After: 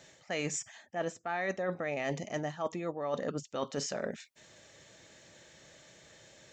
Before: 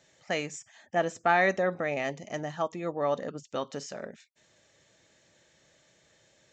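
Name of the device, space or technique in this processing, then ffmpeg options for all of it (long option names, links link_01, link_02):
compression on the reversed sound: -af "areverse,acompressor=threshold=-38dB:ratio=12,areverse,volume=7dB"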